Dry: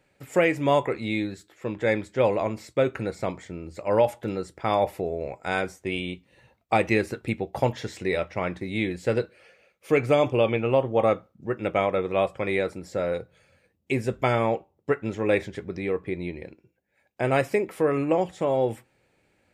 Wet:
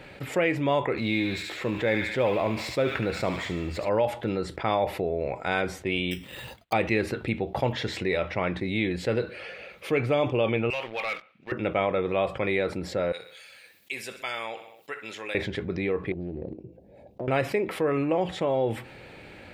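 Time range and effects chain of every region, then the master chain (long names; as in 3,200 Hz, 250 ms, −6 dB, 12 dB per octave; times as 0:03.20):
0:00.97–0:03.89: mu-law and A-law mismatch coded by mu + delay with a high-pass on its return 72 ms, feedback 54%, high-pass 1,600 Hz, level −4 dB
0:06.11–0:06.73: bad sample-rate conversion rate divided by 8×, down none, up hold + high-shelf EQ 3,500 Hz +10.5 dB + downward expander −58 dBFS
0:10.70–0:11.52: de-essing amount 95% + resonant band-pass 2,400 Hz, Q 4.8 + leveller curve on the samples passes 3
0:13.12–0:15.35: first difference + repeating echo 63 ms, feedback 48%, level −18 dB
0:16.12–0:17.28: drawn EQ curve 650 Hz 0 dB, 1,500 Hz −29 dB, 5,400 Hz −17 dB + downward compressor 3 to 1, threshold −40 dBFS + highs frequency-modulated by the lows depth 0.4 ms
whole clip: high shelf with overshoot 5,000 Hz −8 dB, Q 1.5; envelope flattener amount 50%; level −5 dB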